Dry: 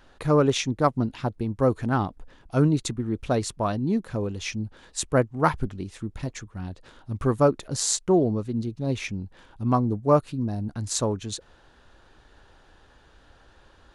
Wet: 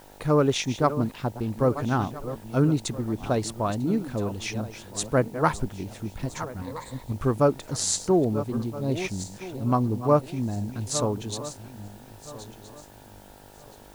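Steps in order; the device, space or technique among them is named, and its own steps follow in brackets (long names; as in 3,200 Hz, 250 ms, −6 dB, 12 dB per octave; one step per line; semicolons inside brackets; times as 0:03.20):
feedback delay that plays each chunk backwards 660 ms, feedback 49%, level −12 dB
0:06.61–0:07.12: EQ curve with evenly spaced ripples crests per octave 1, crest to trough 15 dB
video cassette with head-switching buzz (hum with harmonics 50 Hz, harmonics 19, −51 dBFS 0 dB per octave; white noise bed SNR 30 dB)
level −1 dB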